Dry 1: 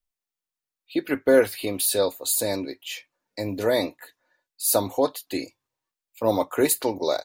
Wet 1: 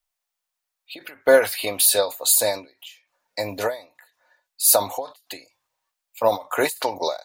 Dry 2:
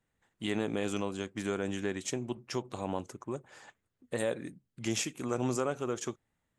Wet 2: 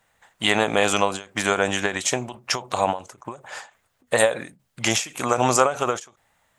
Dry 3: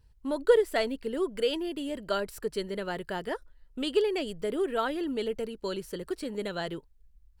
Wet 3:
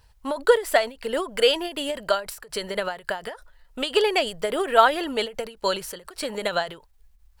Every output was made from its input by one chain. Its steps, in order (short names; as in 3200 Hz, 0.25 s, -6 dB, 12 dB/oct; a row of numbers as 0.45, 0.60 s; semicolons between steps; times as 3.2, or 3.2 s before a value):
resonant low shelf 480 Hz -10 dB, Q 1.5; ending taper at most 170 dB/s; normalise peaks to -2 dBFS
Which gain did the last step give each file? +7.0, +18.0, +13.5 dB